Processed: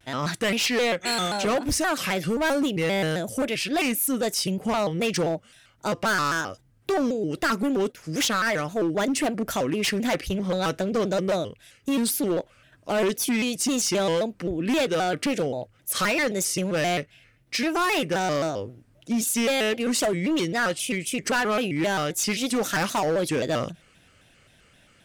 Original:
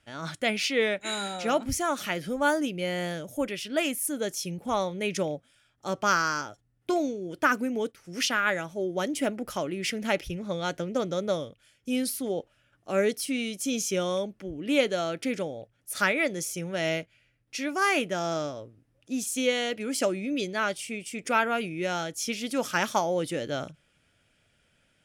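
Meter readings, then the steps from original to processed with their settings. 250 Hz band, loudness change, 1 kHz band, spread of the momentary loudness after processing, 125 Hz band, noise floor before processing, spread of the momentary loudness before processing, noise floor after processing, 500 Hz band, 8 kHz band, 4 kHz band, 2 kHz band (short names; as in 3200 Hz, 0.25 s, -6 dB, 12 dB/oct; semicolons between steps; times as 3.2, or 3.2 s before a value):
+5.0 dB, +4.0 dB, +2.5 dB, 6 LU, +6.5 dB, -69 dBFS, 9 LU, -59 dBFS, +3.5 dB, +5.5 dB, +4.5 dB, +2.5 dB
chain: in parallel at +2.5 dB: compressor, threshold -35 dBFS, peak gain reduction 16.5 dB; on the sum: hard clip -23 dBFS, distortion -10 dB; shaped vibrato square 3.8 Hz, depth 160 cents; gain +3 dB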